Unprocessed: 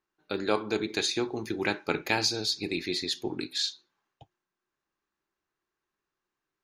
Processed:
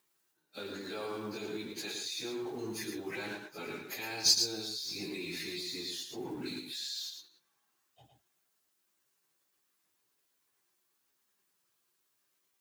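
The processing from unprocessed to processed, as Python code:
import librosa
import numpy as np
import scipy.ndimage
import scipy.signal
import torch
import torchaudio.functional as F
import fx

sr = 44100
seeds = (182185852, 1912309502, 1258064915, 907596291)

y = fx.law_mismatch(x, sr, coded='mu')
y = scipy.signal.sosfilt(scipy.signal.butter(2, 91.0, 'highpass', fs=sr, output='sos'), y)
y = fx.high_shelf(y, sr, hz=4900.0, db=11.5)
y = fx.level_steps(y, sr, step_db=19)
y = fx.stretch_vocoder_free(y, sr, factor=1.9)
y = y + 10.0 ** (-6.0 / 20.0) * np.pad(y, (int(111 * sr / 1000.0), 0))[:len(y)]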